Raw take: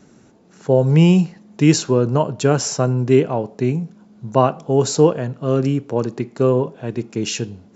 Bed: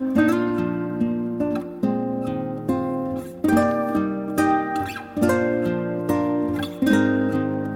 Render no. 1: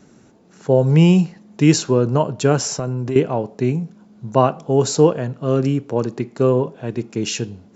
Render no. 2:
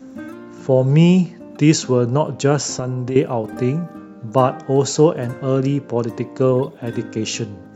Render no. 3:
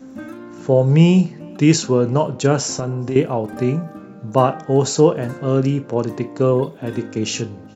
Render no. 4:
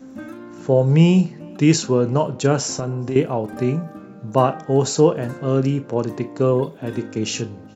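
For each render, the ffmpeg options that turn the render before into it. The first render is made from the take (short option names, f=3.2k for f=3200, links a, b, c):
-filter_complex "[0:a]asettb=1/sr,asplit=3[a][b][c];[a]atrim=end=2.594[d];[b]atrim=start=2.59:end=3.16,asetpts=PTS-STARTPTS,afade=t=in:d=0.004:c=qsin,afade=t=out:st=0.566:d=0.004:c=qsin,acompressor=threshold=-19dB:ratio=6:attack=3.2:release=140:knee=1:detection=peak[e];[c]atrim=start=3.156[f];[d][e]acrossfade=d=0.004:c1=hsin:c2=qsin[g];[g][f]acrossfade=d=0.004:c1=qsin:c2=hsin"
-filter_complex "[1:a]volume=-15dB[a];[0:a][a]amix=inputs=2:normalize=0"
-filter_complex "[0:a]asplit=2[a][b];[b]adelay=37,volume=-12dB[c];[a][c]amix=inputs=2:normalize=0,asplit=2[d][e];[e]adelay=419.8,volume=-28dB,highshelf=f=4k:g=-9.45[f];[d][f]amix=inputs=2:normalize=0"
-af "volume=-1.5dB"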